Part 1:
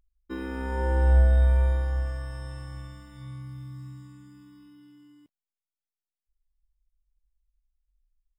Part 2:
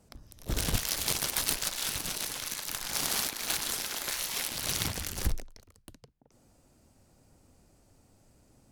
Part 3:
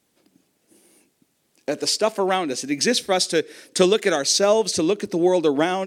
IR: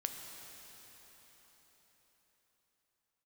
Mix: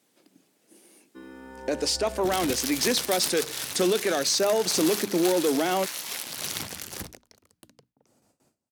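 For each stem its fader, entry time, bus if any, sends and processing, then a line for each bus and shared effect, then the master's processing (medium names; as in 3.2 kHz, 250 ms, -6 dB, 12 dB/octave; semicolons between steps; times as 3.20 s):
-9.5 dB, 0.85 s, bus A, no send, none
-0.5 dB, 1.75 s, no bus, no send, hum notches 60/120/180/240/300 Hz; gate with hold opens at -52 dBFS
+0.5 dB, 0.00 s, bus A, no send, hum notches 50/100/150/200 Hz
bus A: 0.0 dB, saturation -10 dBFS, distortion -18 dB; peak limiter -16.5 dBFS, peak gain reduction 6 dB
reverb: none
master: high-pass 150 Hz 12 dB/octave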